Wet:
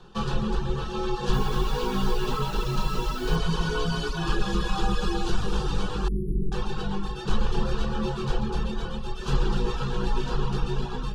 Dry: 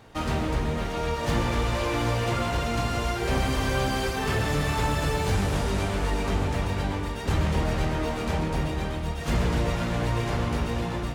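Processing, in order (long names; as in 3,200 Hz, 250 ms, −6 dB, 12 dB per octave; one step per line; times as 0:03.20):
meter weighting curve D
reverb reduction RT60 0.64 s
RIAA equalisation playback
frequency shifter −97 Hz
phaser with its sweep stopped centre 420 Hz, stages 8
0:01.33–0:03.36: bit-depth reduction 8 bits, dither none
0:06.08–0:06.52: linear-phase brick-wall band-stop 450–9,800 Hz
level +1.5 dB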